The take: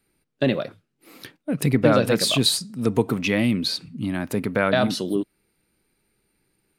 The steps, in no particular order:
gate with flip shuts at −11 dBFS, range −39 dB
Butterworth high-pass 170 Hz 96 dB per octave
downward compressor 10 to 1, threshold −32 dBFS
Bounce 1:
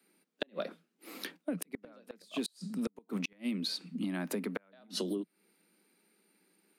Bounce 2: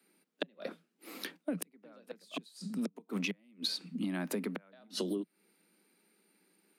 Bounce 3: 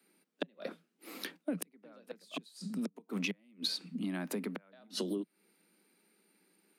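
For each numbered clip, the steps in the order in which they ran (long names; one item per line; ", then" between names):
Butterworth high-pass, then gate with flip, then downward compressor
gate with flip, then Butterworth high-pass, then downward compressor
gate with flip, then downward compressor, then Butterworth high-pass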